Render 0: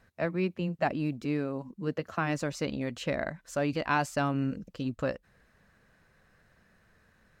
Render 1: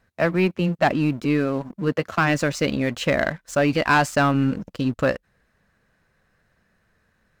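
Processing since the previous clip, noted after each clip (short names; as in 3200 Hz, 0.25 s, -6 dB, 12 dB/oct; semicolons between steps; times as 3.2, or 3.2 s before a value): dynamic EQ 1700 Hz, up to +4 dB, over -43 dBFS, Q 0.77; sample leveller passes 2; gain +2.5 dB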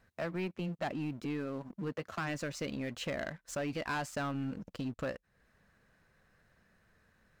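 compressor 2:1, threshold -39 dBFS, peak gain reduction 13.5 dB; soft clip -25.5 dBFS, distortion -19 dB; gain -3 dB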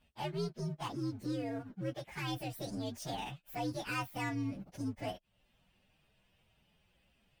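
inharmonic rescaling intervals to 128%; gain +1 dB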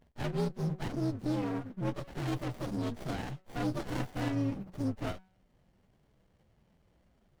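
de-hum 187.2 Hz, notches 10; running maximum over 33 samples; gain +6 dB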